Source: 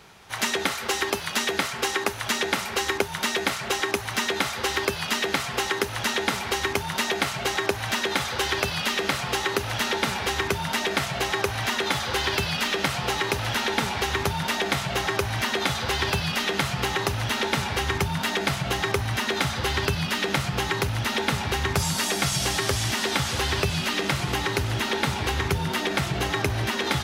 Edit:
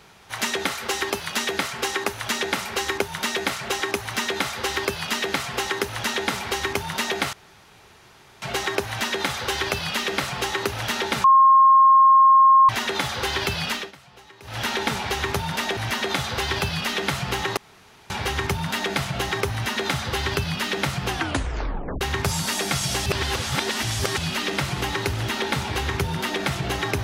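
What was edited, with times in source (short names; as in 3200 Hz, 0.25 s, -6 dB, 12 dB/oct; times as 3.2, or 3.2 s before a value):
7.33 insert room tone 1.09 s
10.15–11.6 bleep 1070 Hz -10 dBFS
12.61–13.55 dip -22 dB, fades 0.22 s
14.68–15.28 cut
17.08–17.61 room tone
20.59 tape stop 0.93 s
22.57–23.69 reverse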